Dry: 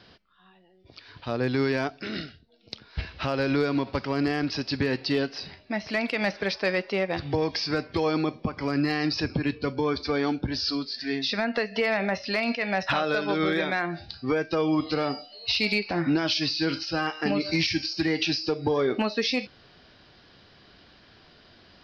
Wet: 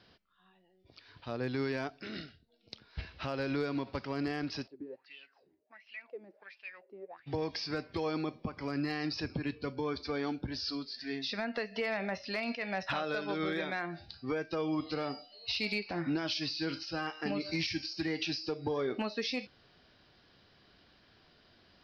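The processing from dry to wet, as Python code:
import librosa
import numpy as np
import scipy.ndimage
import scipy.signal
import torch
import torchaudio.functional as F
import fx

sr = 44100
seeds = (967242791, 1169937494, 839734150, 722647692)

y = fx.wah_lfo(x, sr, hz=1.4, low_hz=310.0, high_hz=2900.0, q=8.6, at=(4.66, 7.26), fade=0.02)
y = y * librosa.db_to_amplitude(-9.0)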